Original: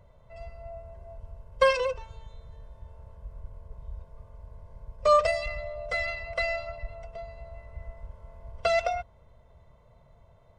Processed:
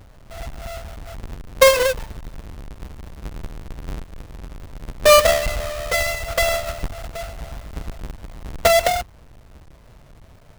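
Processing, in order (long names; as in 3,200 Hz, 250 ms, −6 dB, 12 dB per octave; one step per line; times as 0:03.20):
each half-wave held at its own peak
level +5.5 dB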